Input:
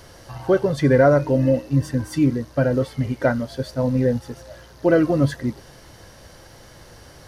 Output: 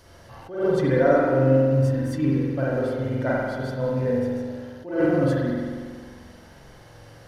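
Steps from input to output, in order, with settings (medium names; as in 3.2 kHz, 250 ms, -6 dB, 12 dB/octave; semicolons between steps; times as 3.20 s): spring tank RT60 1.8 s, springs 45 ms, chirp 55 ms, DRR -5 dB; attacks held to a fixed rise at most 120 dB/s; trim -8 dB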